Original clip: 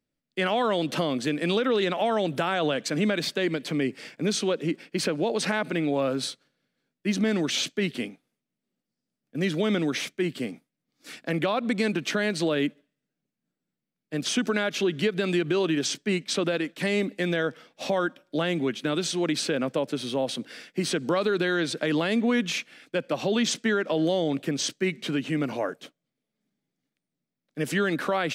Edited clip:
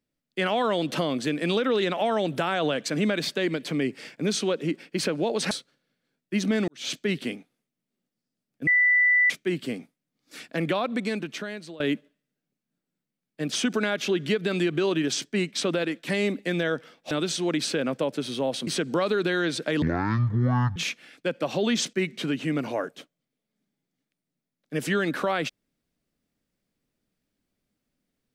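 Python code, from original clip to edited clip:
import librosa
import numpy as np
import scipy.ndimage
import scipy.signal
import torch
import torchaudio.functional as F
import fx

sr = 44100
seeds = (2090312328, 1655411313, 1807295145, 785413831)

y = fx.edit(x, sr, fx.cut(start_s=5.51, length_s=0.73),
    fx.fade_in_span(start_s=7.41, length_s=0.25, curve='qua'),
    fx.bleep(start_s=9.4, length_s=0.63, hz=1980.0, db=-16.5),
    fx.fade_out_to(start_s=11.45, length_s=1.08, floor_db=-20.5),
    fx.cut(start_s=17.84, length_s=1.02),
    fx.cut(start_s=20.42, length_s=0.4),
    fx.speed_span(start_s=21.97, length_s=0.48, speed=0.51),
    fx.cut(start_s=23.62, length_s=1.16), tone=tone)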